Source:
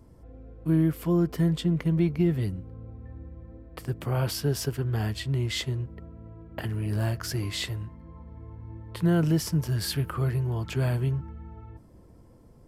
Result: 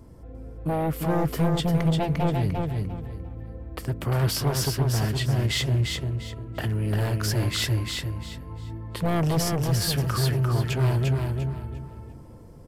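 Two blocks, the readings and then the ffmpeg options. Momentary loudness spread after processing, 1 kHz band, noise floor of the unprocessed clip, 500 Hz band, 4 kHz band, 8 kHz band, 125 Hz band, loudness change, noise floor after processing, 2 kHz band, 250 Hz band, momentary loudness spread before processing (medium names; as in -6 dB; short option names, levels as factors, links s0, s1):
14 LU, +9.0 dB, -53 dBFS, +3.5 dB, +6.0 dB, +6.0 dB, +3.5 dB, +2.0 dB, -44 dBFS, +5.0 dB, -0.5 dB, 20 LU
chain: -af "aeval=exprs='0.2*sin(PI/2*2.51*val(0)/0.2)':c=same,aecho=1:1:348|696|1044|1392:0.631|0.17|0.046|0.0124,volume=0.473"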